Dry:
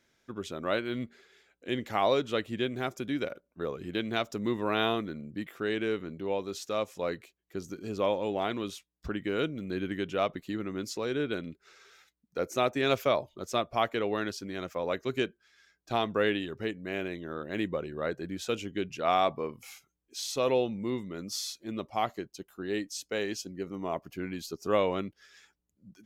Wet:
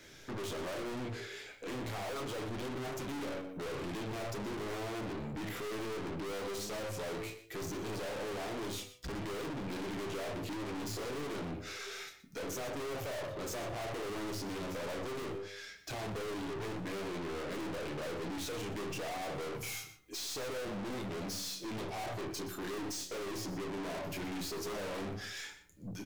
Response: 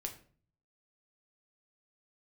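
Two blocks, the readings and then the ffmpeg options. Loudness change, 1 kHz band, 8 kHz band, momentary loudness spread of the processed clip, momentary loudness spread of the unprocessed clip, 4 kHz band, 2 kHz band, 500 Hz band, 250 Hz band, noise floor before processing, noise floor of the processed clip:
-7.5 dB, -9.0 dB, 0.0 dB, 3 LU, 11 LU, -5.5 dB, -6.0 dB, -8.5 dB, -6.5 dB, -79 dBFS, -54 dBFS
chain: -filter_complex "[0:a]acrossover=split=210|1100[s0][s1][s2];[s1]bandpass=f=460:t=q:w=0.69:csg=0[s3];[s2]acompressor=threshold=0.00501:ratio=6[s4];[s0][s3][s4]amix=inputs=3:normalize=0,alimiter=limit=0.0631:level=0:latency=1[s5];[1:a]atrim=start_sample=2205,atrim=end_sample=3528[s6];[s5][s6]afir=irnorm=-1:irlink=0,flanger=delay=8:depth=3.1:regen=90:speed=0.11:shape=sinusoidal,aeval=exprs='0.0562*sin(PI/2*2.51*val(0)/0.0562)':c=same,asplit=2[s7][s8];[s8]adelay=28,volume=0.376[s9];[s7][s9]amix=inputs=2:normalize=0,aeval=exprs='(tanh(316*val(0)+0.2)-tanh(0.2))/316':c=same,asplit=2[s10][s11];[s11]adelay=122.4,volume=0.251,highshelf=f=4000:g=-2.76[s12];[s10][s12]amix=inputs=2:normalize=0,volume=3.55"

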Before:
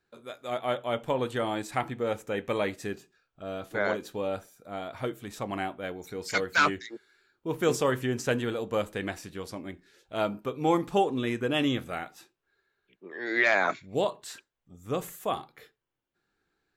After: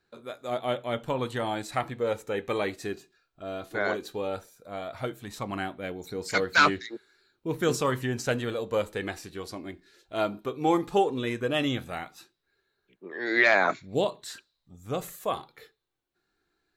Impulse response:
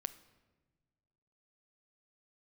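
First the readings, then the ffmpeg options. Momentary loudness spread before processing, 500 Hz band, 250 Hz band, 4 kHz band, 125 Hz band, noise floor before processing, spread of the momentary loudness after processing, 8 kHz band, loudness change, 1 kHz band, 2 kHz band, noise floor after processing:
16 LU, +0.5 dB, 0.0 dB, +2.0 dB, +1.0 dB, -82 dBFS, 16 LU, +1.0 dB, +1.0 dB, +1.5 dB, +2.0 dB, -79 dBFS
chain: -filter_complex "[0:a]aphaser=in_gain=1:out_gain=1:delay=2.9:decay=0.3:speed=0.15:type=sinusoidal,asplit=2[s0][s1];[s1]bandpass=f=4000:t=q:w=8.8:csg=0[s2];[1:a]atrim=start_sample=2205,highshelf=f=3200:g=9[s3];[s2][s3]afir=irnorm=-1:irlink=0,volume=0.668[s4];[s0][s4]amix=inputs=2:normalize=0"

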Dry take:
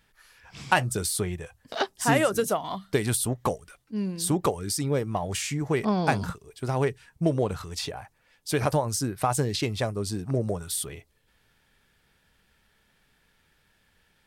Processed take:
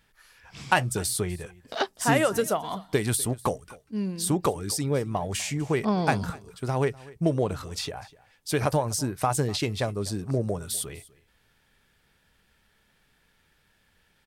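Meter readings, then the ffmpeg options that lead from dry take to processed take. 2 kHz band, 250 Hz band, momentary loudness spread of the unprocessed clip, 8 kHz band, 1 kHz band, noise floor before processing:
0.0 dB, 0.0 dB, 11 LU, 0.0 dB, 0.0 dB, -68 dBFS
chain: -af "aecho=1:1:248:0.0841"

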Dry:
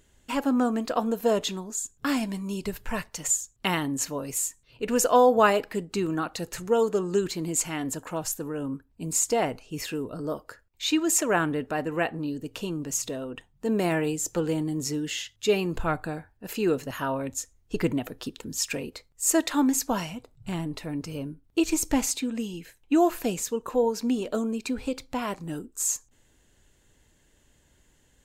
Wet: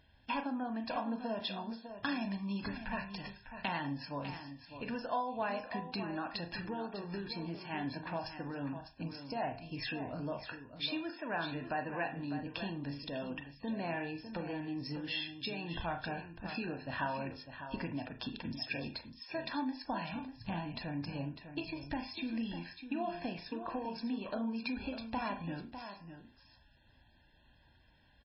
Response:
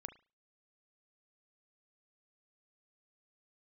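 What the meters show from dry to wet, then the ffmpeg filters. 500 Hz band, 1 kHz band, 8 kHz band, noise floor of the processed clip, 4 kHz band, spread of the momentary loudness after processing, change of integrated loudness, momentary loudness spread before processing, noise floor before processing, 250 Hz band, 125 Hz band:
-15.5 dB, -9.5 dB, under -40 dB, -65 dBFS, -7.5 dB, 6 LU, -12.0 dB, 11 LU, -64 dBFS, -11.0 dB, -8.0 dB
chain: -filter_complex "[0:a]bandreject=f=349.1:t=h:w=4,bandreject=f=698.2:t=h:w=4,bandreject=f=1047.3:t=h:w=4,bandreject=f=1396.4:t=h:w=4,bandreject=f=1745.5:t=h:w=4,bandreject=f=2094.6:t=h:w=4,bandreject=f=2443.7:t=h:w=4,bandreject=f=2792.8:t=h:w=4,bandreject=f=3141.9:t=h:w=4,bandreject=f=3491:t=h:w=4,bandreject=f=3840.1:t=h:w=4,bandreject=f=4189.2:t=h:w=4,bandreject=f=4538.3:t=h:w=4,bandreject=f=4887.4:t=h:w=4,bandreject=f=5236.5:t=h:w=4,bandreject=f=5585.6:t=h:w=4,acompressor=threshold=0.0282:ratio=6,highpass=f=65:p=1,equalizer=f=170:w=2.8:g=-4,aecho=1:1:1.2:0.67,aecho=1:1:601:0.316[s0];[1:a]atrim=start_sample=2205[s1];[s0][s1]afir=irnorm=-1:irlink=0,volume=1.33" -ar 16000 -c:a libmp3lame -b:a 16k

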